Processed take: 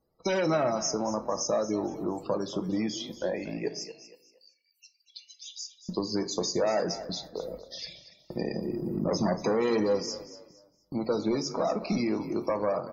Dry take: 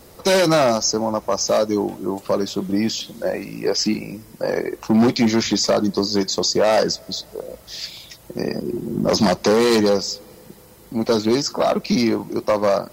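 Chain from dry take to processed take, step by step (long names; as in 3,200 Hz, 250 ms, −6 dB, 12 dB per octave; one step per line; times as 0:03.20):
noise gate −35 dBFS, range −25 dB
dynamic equaliser 4,400 Hz, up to −6 dB, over −40 dBFS, Q 3
downward compressor 2 to 1, threshold −26 dBFS, peak gain reduction 7.5 dB
spectral peaks only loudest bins 64
0:03.68–0:05.89: Chebyshev high-pass with heavy ripple 2,700 Hz, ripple 6 dB
echo with shifted repeats 234 ms, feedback 32%, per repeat +32 Hz, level −14 dB
rectangular room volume 380 cubic metres, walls furnished, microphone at 0.62 metres
level −4 dB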